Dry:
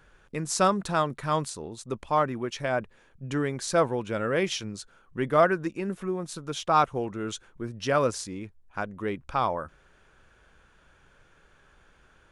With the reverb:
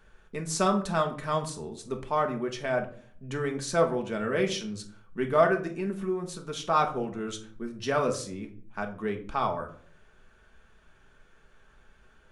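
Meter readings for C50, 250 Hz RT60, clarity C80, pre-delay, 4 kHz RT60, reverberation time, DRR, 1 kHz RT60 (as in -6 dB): 12.0 dB, 0.70 s, 16.5 dB, 3 ms, 0.35 s, 0.50 s, 3.0 dB, 0.45 s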